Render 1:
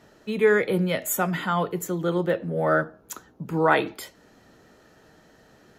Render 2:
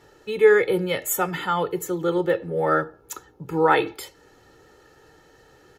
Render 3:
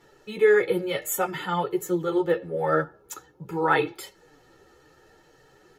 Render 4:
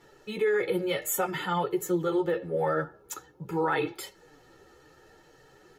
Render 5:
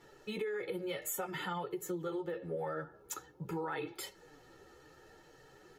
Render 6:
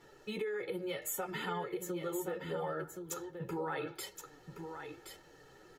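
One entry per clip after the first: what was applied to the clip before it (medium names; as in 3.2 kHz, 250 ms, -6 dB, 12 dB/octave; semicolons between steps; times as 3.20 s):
comb 2.3 ms, depth 67%
chorus voices 6, 0.48 Hz, delay 10 ms, depth 4.8 ms
peak limiter -18.5 dBFS, peak gain reduction 9.5 dB
compression 6:1, threshold -33 dBFS, peak gain reduction 10.5 dB; trim -2.5 dB
delay 1072 ms -7.5 dB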